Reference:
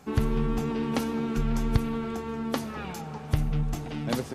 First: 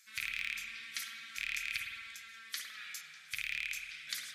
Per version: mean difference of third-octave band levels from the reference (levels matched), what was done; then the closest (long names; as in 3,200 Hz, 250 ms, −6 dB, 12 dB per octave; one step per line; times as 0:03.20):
20.0 dB: loose part that buzzes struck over −23 dBFS, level −17 dBFS
inverse Chebyshev high-pass filter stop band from 970 Hz, stop band 40 dB
parametric band 2,800 Hz −9.5 dB 0.24 octaves
spring reverb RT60 1.4 s, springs 51 ms, chirp 60 ms, DRR 0.5 dB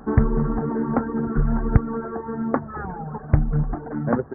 10.0 dB: Butterworth low-pass 1,700 Hz 72 dB per octave
reverb reduction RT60 1.2 s
on a send: backwards echo 489 ms −23.5 dB
on the sum: highs frequency-modulated by the lows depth 0.46 ms
level +8.5 dB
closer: second